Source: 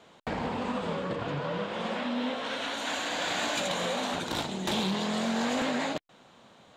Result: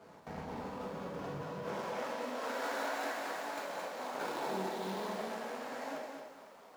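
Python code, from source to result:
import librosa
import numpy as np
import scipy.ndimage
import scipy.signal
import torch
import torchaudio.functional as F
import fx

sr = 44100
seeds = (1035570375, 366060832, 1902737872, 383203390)

y = scipy.ndimage.median_filter(x, 15, mode='constant')
y = fx.highpass(y, sr, hz=fx.steps((0.0, 56.0), (1.76, 380.0)), slope=12)
y = fx.over_compress(y, sr, threshold_db=-39.0, ratio=-1.0)
y = fx.rev_plate(y, sr, seeds[0], rt60_s=0.82, hf_ratio=0.95, predelay_ms=0, drr_db=-1.0)
y = fx.echo_crushed(y, sr, ms=219, feedback_pct=35, bits=10, wet_db=-5.5)
y = y * librosa.db_to_amplitude(-5.5)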